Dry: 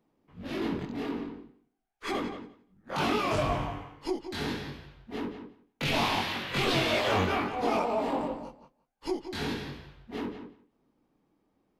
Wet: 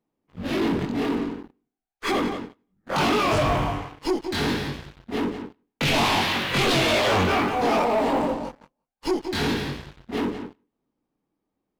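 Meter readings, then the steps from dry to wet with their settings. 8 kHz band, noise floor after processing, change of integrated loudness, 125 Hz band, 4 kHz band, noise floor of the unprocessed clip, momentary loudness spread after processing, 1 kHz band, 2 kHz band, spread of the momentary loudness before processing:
+9.5 dB, -82 dBFS, +7.0 dB, +7.0 dB, +7.5 dB, -75 dBFS, 15 LU, +7.0 dB, +7.5 dB, 17 LU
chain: waveshaping leveller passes 3; trim -1.5 dB

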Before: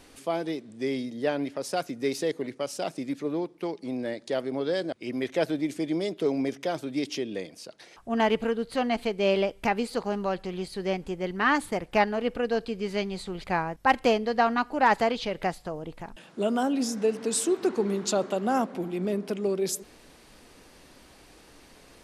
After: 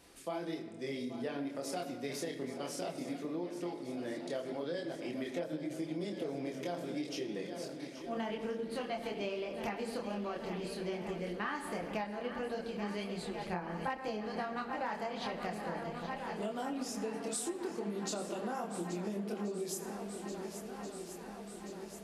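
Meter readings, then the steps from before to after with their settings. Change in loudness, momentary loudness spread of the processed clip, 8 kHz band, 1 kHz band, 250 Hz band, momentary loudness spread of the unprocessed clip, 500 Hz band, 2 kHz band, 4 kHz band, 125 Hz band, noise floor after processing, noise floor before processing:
-11.0 dB, 4 LU, -8.5 dB, -12.0 dB, -9.5 dB, 9 LU, -11.0 dB, -12.0 dB, -9.5 dB, -7.0 dB, -47 dBFS, -54 dBFS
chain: high-pass 44 Hz; treble shelf 9.3 kHz +5 dB; chorus voices 6, 1.5 Hz, delay 26 ms, depth 3 ms; shuffle delay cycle 1381 ms, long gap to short 1.5:1, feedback 64%, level -14 dB; simulated room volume 2000 m³, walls mixed, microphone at 0.76 m; compression 12:1, threshold -30 dBFS, peak gain reduction 16 dB; trim -4 dB

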